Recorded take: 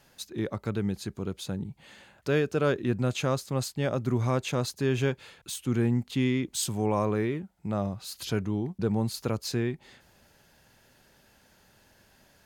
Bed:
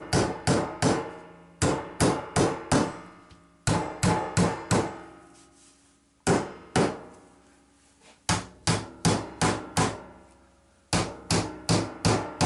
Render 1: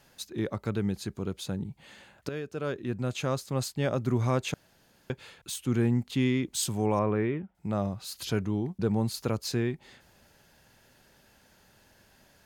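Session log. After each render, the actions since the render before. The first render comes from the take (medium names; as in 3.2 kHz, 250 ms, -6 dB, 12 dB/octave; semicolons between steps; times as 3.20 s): 2.29–3.73 s: fade in, from -12.5 dB; 4.54–5.10 s: room tone; 6.99–7.55 s: Savitzky-Golay filter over 25 samples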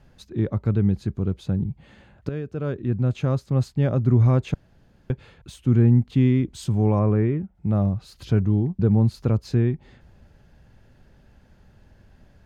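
RIAA curve playback; band-stop 940 Hz, Q 30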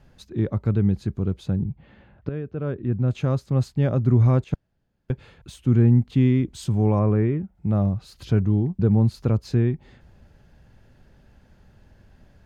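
1.56–3.08 s: distance through air 260 m; 4.44–5.11 s: upward expansion, over -54 dBFS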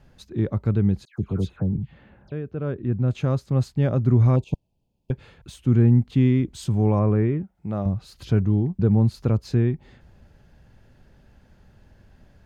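1.05–2.32 s: phase dispersion lows, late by 129 ms, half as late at 1.8 kHz; 4.36–5.11 s: elliptic band-stop 980–2500 Hz; 7.43–7.86 s: bass shelf 200 Hz -11 dB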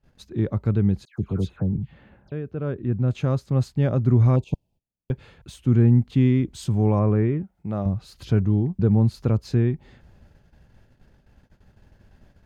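gate -52 dBFS, range -21 dB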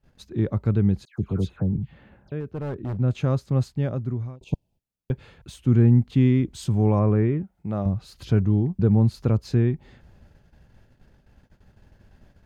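2.40–2.98 s: hard clipper -25.5 dBFS; 3.50–4.41 s: fade out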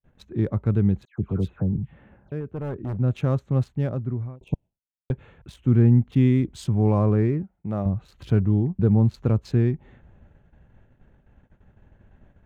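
local Wiener filter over 9 samples; gate with hold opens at -53 dBFS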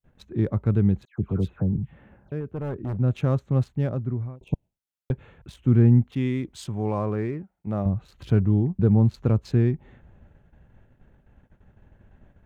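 6.07–7.67 s: bass shelf 340 Hz -10 dB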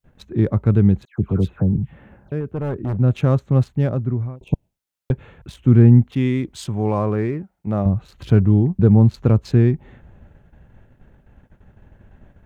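trim +6 dB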